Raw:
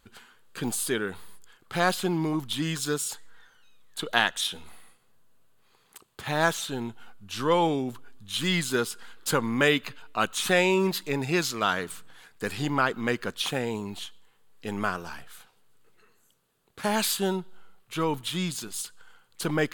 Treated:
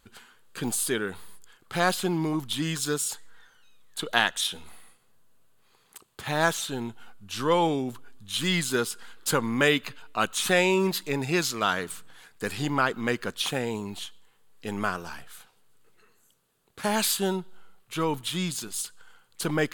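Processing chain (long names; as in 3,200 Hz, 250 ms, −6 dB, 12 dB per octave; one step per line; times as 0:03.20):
parametric band 9,400 Hz +2.5 dB 1.5 octaves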